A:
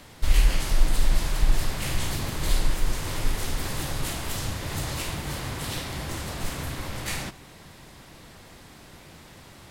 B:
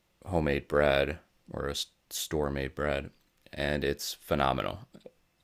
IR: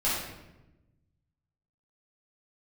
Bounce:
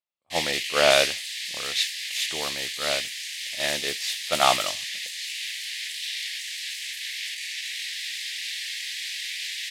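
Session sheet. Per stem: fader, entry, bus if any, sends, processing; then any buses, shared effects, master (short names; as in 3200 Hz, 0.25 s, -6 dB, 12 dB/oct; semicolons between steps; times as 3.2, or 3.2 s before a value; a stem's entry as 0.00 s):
-1.0 dB, 0.30 s, no send, steep high-pass 1700 Hz 96 dB/oct; rotary speaker horn 5 Hz; fast leveller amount 100%
+0.5 dB, 0.00 s, no send, band shelf 870 Hz +8.5 dB 1.3 oct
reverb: off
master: weighting filter D; expander -15 dBFS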